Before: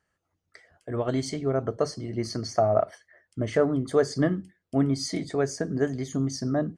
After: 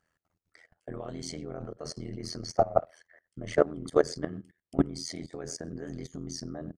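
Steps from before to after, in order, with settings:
far-end echo of a speakerphone 100 ms, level −24 dB
output level in coarse steps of 20 dB
amplitude modulation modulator 83 Hz, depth 85%
level +5.5 dB

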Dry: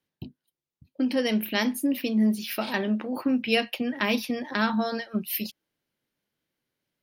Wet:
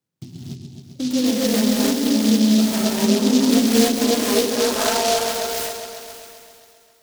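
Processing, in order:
in parallel at 0 dB: brickwall limiter −18 dBFS, peak gain reduction 8.5 dB
on the sum: high-pass filter sweep 120 Hz → 1,800 Hz, 0:02.61–0:06.37
echo whose low-pass opens from repeat to repeat 133 ms, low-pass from 400 Hz, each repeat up 2 octaves, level −3 dB
reverb whose tail is shaped and stops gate 320 ms rising, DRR −7.5 dB
short delay modulated by noise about 4,400 Hz, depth 0.13 ms
level −8.5 dB

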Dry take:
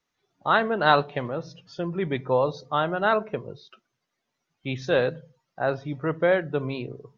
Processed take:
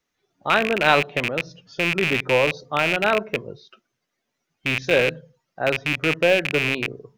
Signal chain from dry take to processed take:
loose part that buzzes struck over −34 dBFS, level −12 dBFS
graphic EQ with 10 bands 125 Hz −4 dB, 1,000 Hz −5 dB, 4,000 Hz −3 dB
level +4 dB

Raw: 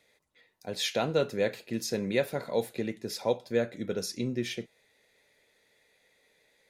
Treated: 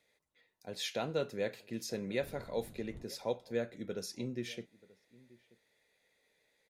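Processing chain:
0:02.21–0:03.03: wind on the microphone 190 Hz −38 dBFS
slap from a distant wall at 160 metres, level −22 dB
level −7.5 dB

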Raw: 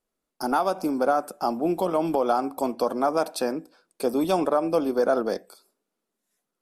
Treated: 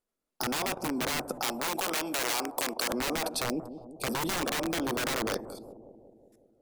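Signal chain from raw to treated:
0:03.44–0:04.07: elliptic band-stop filter 730–2,600 Hz
wrap-around overflow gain 19.5 dB
output level in coarse steps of 19 dB
0:01.39–0:02.90: bass and treble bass −13 dB, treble +4 dB
on a send: bucket-brigade delay 182 ms, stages 1,024, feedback 63%, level −11 dB
on the sum: level +7 dB

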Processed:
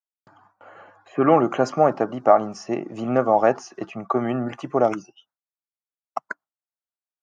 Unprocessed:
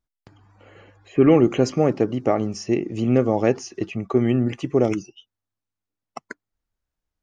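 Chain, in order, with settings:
high-pass filter 130 Hz 24 dB per octave
noise gate with hold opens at −49 dBFS
flat-topped bell 970 Hz +14 dB
level −5 dB

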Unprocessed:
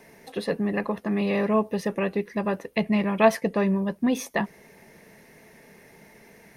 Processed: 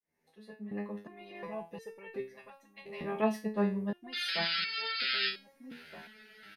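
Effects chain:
fade in at the beginning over 1.61 s
0:02.20–0:03.01: guitar amp tone stack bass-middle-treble 10-0-10
0:04.12–0:05.29: sound drawn into the spectrogram noise 1,300–5,200 Hz −20 dBFS
slap from a distant wall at 270 metres, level −12 dB
step-sequenced resonator 2.8 Hz 80–450 Hz
level −1 dB

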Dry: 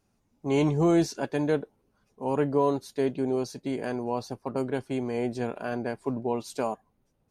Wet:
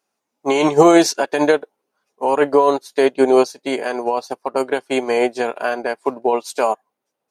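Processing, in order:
high-pass filter 510 Hz 12 dB per octave
boost into a limiter +25.5 dB
expander for the loud parts 2.5 to 1, over −22 dBFS

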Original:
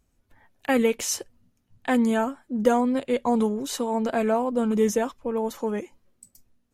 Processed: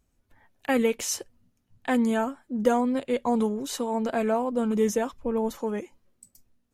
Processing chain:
0:05.13–0:05.56: low-shelf EQ 180 Hz +10 dB
level −2 dB

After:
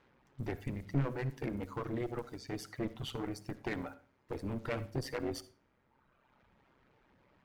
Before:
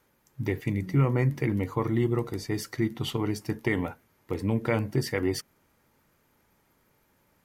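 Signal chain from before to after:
reverb reduction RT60 1.4 s
low-pass that shuts in the quiet parts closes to 2,900 Hz, open at −27.5 dBFS
asymmetric clip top −32 dBFS
high-shelf EQ 4,500 Hz −6 dB
in parallel at −9.5 dB: sine wavefolder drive 16 dB, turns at −53.5 dBFS
on the sum: amplitude modulation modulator 130 Hz, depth 45%
on a send at −15 dB: convolution reverb RT60 0.40 s, pre-delay 53 ms
on the sum: level −3 dB

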